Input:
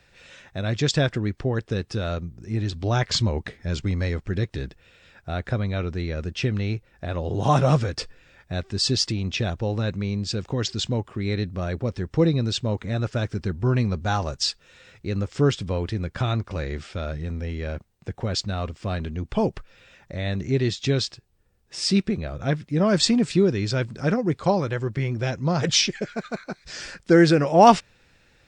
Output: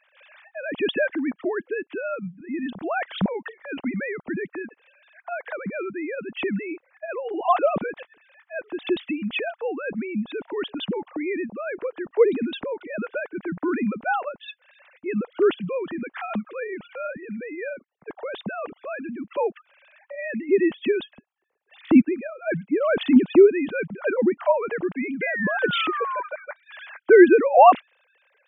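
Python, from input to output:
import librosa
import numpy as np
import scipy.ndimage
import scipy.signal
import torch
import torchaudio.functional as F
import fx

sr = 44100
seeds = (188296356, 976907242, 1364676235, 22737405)

y = fx.sine_speech(x, sr)
y = fx.low_shelf(y, sr, hz=250.0, db=11.0, at=(21.05, 22.06))
y = fx.spec_paint(y, sr, seeds[0], shape='fall', start_s=25.21, length_s=1.02, low_hz=970.0, high_hz=2100.0, level_db=-28.0)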